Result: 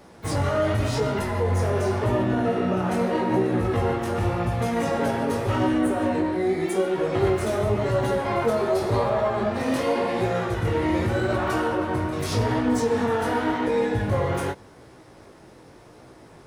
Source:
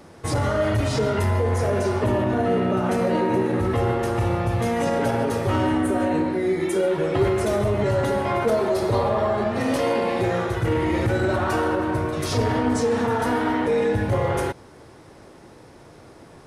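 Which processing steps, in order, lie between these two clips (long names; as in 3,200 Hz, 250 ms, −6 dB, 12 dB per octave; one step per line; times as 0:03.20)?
chorus effect 0.87 Hz, delay 15.5 ms, depth 7 ms
pitch-shifted copies added +12 semitones −15 dB
level +1 dB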